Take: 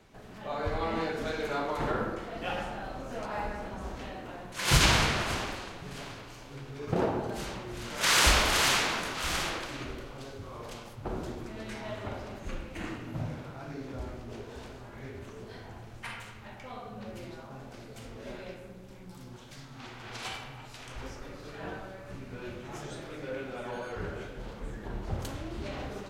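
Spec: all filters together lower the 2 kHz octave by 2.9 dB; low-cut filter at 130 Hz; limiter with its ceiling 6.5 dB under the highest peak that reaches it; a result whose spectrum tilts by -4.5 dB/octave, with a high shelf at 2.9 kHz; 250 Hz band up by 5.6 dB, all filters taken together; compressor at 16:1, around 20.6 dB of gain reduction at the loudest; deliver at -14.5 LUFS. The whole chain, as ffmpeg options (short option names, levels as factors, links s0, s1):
-af "highpass=130,equalizer=f=250:t=o:g=8,equalizer=f=2000:t=o:g=-5.5,highshelf=f=2900:g=4,acompressor=threshold=0.0112:ratio=16,volume=29.9,alimiter=limit=0.596:level=0:latency=1"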